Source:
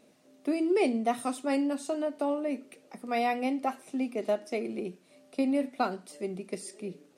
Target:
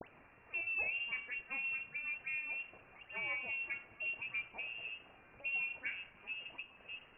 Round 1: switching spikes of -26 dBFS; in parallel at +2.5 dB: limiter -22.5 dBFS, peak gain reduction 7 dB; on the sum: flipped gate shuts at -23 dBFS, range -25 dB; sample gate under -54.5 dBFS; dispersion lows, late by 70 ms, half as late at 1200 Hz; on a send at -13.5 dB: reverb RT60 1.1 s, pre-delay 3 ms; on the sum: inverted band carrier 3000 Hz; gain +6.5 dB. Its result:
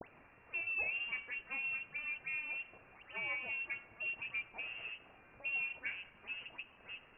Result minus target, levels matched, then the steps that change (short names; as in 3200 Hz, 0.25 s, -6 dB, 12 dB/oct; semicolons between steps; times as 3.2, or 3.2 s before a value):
sample gate: distortion +12 dB
change: sample gate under -66 dBFS